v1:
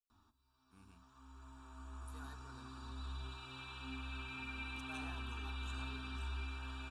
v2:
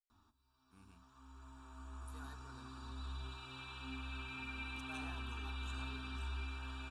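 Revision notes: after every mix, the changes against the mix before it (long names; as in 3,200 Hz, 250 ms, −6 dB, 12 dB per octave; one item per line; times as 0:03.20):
nothing changed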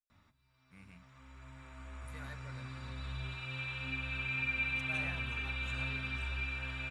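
master: remove phaser with its sweep stopped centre 560 Hz, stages 6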